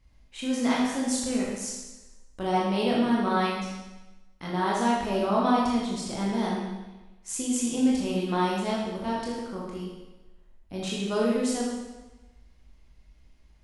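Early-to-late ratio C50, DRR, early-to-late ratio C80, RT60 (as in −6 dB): 0.0 dB, −5.0 dB, 3.0 dB, 1.1 s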